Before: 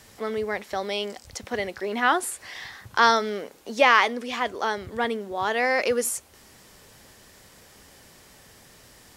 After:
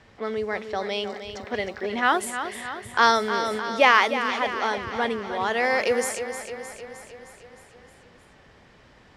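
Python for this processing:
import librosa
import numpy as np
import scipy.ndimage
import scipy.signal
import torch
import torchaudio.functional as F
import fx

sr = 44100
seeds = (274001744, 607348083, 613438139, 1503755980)

y = fx.env_lowpass(x, sr, base_hz=2600.0, full_db=-18.0)
y = fx.quant_dither(y, sr, seeds[0], bits=12, dither='none', at=(0.99, 1.88))
y = fx.echo_feedback(y, sr, ms=309, feedback_pct=60, wet_db=-9.5)
y = fx.sustainer(y, sr, db_per_s=22.0, at=(3.19, 3.98))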